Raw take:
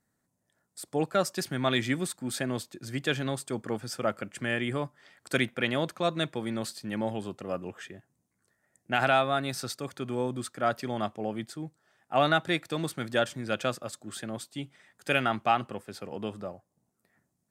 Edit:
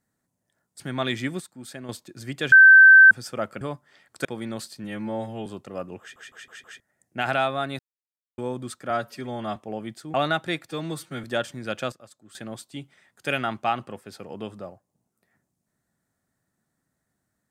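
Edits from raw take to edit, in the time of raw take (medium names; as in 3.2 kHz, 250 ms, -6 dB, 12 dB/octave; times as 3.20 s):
0.80–1.46 s: delete
2.06–2.55 s: gain -7.5 dB
3.18–3.77 s: bleep 1.55 kHz -7 dBFS
4.27–4.72 s: delete
5.36–6.30 s: delete
6.89–7.20 s: stretch 2×
7.74 s: stutter in place 0.16 s, 5 plays
9.53–10.12 s: mute
10.64–11.08 s: stretch 1.5×
11.66–12.15 s: delete
12.68–13.06 s: stretch 1.5×
13.74–14.17 s: gain -11 dB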